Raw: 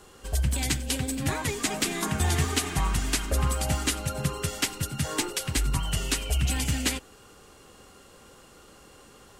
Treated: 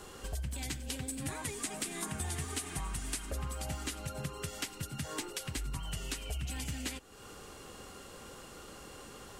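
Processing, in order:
0:01.08–0:03.31: parametric band 9,300 Hz +9 dB 0.52 octaves
downward compressor 3 to 1, threshold −43 dBFS, peak gain reduction 17.5 dB
level +2.5 dB

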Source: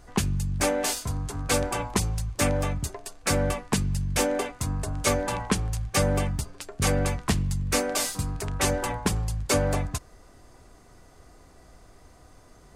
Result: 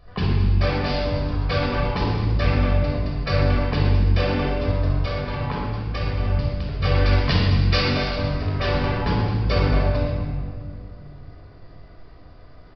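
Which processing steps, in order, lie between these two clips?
0:04.91–0:06.25: downward compressor, threshold −27 dBFS, peak gain reduction 9 dB
0:06.95–0:07.87: high-shelf EQ 2,300 Hz +11 dB
convolution reverb RT60 2.0 s, pre-delay 23 ms, DRR −4.5 dB
downsampling to 11,025 Hz
level −4.5 dB

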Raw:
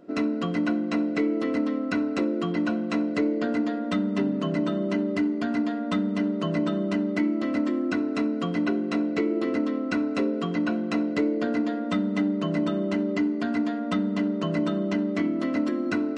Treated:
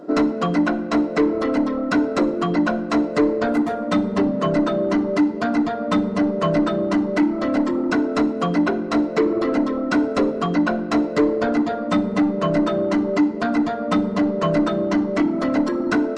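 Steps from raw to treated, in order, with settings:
0:03.48–0:03.91: running median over 9 samples
parametric band 2,500 Hz −13.5 dB 1.3 octaves
mid-hump overdrive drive 18 dB, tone 3,300 Hz, clips at −14 dBFS
reverb reduction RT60 1.1 s
rectangular room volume 1,800 cubic metres, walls mixed, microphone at 0.45 metres
level +6.5 dB

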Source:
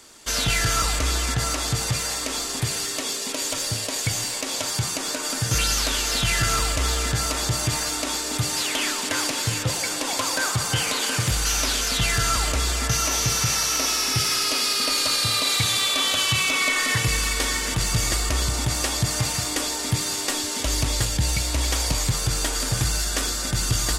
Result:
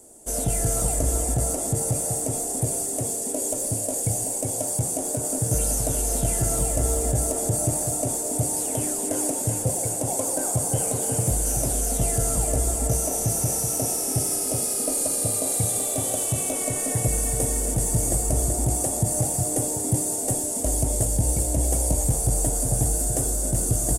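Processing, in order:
drawn EQ curve 120 Hz 0 dB, 720 Hz +4 dB, 1,100 Hz −17 dB, 4,300 Hz −23 dB, 9,100 Hz +8 dB, 14,000 Hz −1 dB
single-tap delay 380 ms −6 dB

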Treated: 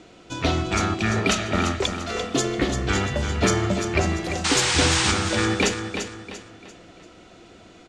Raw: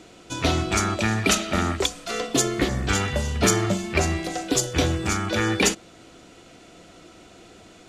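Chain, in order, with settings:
0:01.01–0:01.22: healed spectral selection 380–1,100 Hz
0:04.24–0:04.77: high-shelf EQ 10,000 Hz +11.5 dB
0:04.44–0:05.12: sound drawn into the spectrogram noise 760–9,300 Hz −20 dBFS
high-frequency loss of the air 65 metres
repeating echo 343 ms, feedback 38%, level −8 dB

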